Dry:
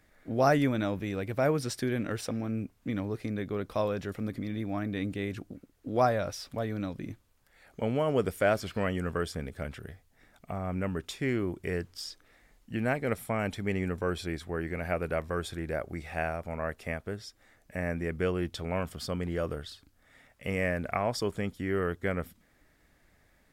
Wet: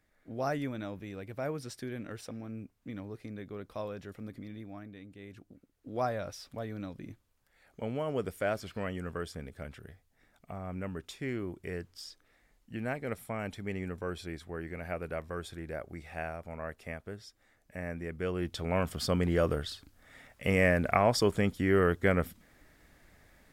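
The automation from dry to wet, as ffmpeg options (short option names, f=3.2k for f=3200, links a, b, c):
-af "volume=13.5dB,afade=t=out:st=4.44:d=0.62:silence=0.354813,afade=t=in:st=5.06:d=1.13:silence=0.251189,afade=t=in:st=18.2:d=0.9:silence=0.298538"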